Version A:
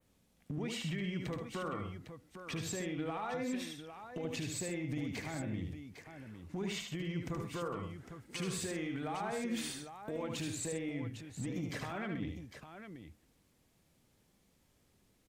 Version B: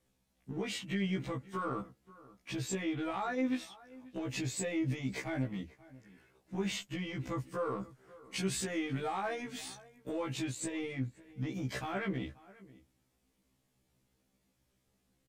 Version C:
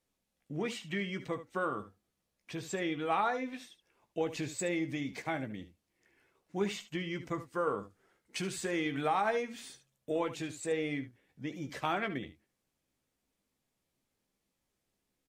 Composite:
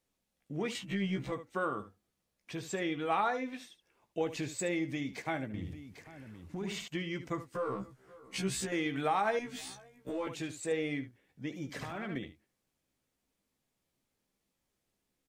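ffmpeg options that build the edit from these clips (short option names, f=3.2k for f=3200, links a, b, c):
-filter_complex "[1:a]asplit=3[a][b][c];[0:a]asplit=2[d][e];[2:a]asplit=6[f][g][h][i][j][k];[f]atrim=end=0.752[l];[a]atrim=start=0.748:end=1.322[m];[g]atrim=start=1.318:end=5.542[n];[d]atrim=start=5.538:end=6.882[o];[h]atrim=start=6.878:end=7.552[p];[b]atrim=start=7.548:end=8.722[q];[i]atrim=start=8.718:end=9.392[r];[c]atrim=start=9.388:end=10.272[s];[j]atrim=start=10.268:end=11.762[t];[e]atrim=start=11.758:end=12.162[u];[k]atrim=start=12.158[v];[l][m]acrossfade=d=0.004:c1=hsin:c2=hsin[w];[w][n]acrossfade=d=0.004:c1=hsin:c2=hsin[x];[x][o]acrossfade=d=0.004:c1=hsin:c2=hsin[y];[y][p]acrossfade=d=0.004:c1=hsin:c2=hsin[z];[z][q]acrossfade=d=0.004:c1=hsin:c2=hsin[aa];[aa][r]acrossfade=d=0.004:c1=hsin:c2=hsin[ab];[ab][s]acrossfade=d=0.004:c1=hsin:c2=hsin[ac];[ac][t]acrossfade=d=0.004:c1=hsin:c2=hsin[ad];[ad][u]acrossfade=d=0.004:c1=hsin:c2=hsin[ae];[ae][v]acrossfade=d=0.004:c1=hsin:c2=hsin"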